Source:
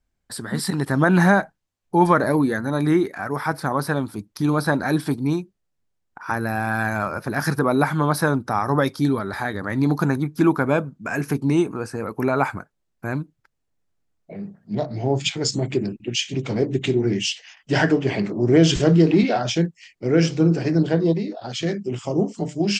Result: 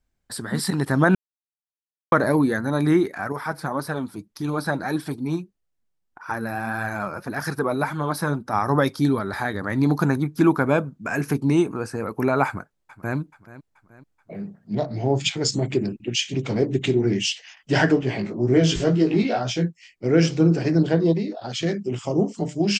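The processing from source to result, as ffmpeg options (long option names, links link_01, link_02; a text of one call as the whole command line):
ffmpeg -i in.wav -filter_complex "[0:a]asettb=1/sr,asplit=3[link_01][link_02][link_03];[link_01]atrim=end=3.324[link_04];[link_02]atrim=start=3.32:end=8.53,asetpts=PTS-STARTPTS,afade=type=in:duration=0.004:curve=qsin,afade=type=out:start_time=5.206:duration=0.004:curve=qsin,flanger=delay=1.3:depth=5.4:regen=42:speed=1.7:shape=triangular[link_05];[link_03]atrim=start=8.526[link_06];[link_04][link_05]acrossfade=duration=0.004:curve1=hsin:curve2=qsin[link_07];[link_07][link_06]acrossfade=duration=0.004:curve1=qsin:curve2=hsin,asplit=2[link_08][link_09];[link_09]afade=type=in:start_time=12.46:duration=0.01,afade=type=out:start_time=13.17:duration=0.01,aecho=0:1:430|860|1290|1720:0.141254|0.0706269|0.0353134|0.0176567[link_10];[link_08][link_10]amix=inputs=2:normalize=0,asettb=1/sr,asplit=3[link_11][link_12][link_13];[link_11]atrim=end=18.014[link_14];[link_12]atrim=start=18.01:end=20.04,asetpts=PTS-STARTPTS,afade=type=in:duration=0.004:curve=qsin,afade=type=out:start_time=2.026:duration=0.004:curve=qsin,flanger=delay=15.5:depth=2.8:speed=2[link_15];[link_13]atrim=start=20.036[link_16];[link_14][link_15]acrossfade=duration=0.004:curve1=hsin:curve2=qsin[link_17];[link_17][link_16]acrossfade=duration=0.004:curve1=qsin:curve2=hsin,asplit=3[link_18][link_19][link_20];[link_18]atrim=end=1.15,asetpts=PTS-STARTPTS,afade=type=out:start_time=1.146:duration=0.004:curve=hsin[link_21];[link_19]atrim=start=1.15:end=2.12,asetpts=PTS-STARTPTS,volume=0[link_22];[link_20]atrim=start=2.12,asetpts=PTS-STARTPTS,afade=type=in:duration=0.004:curve=hsin[link_23];[link_21][link_22][link_23]concat=n=3:v=0:a=1" out.wav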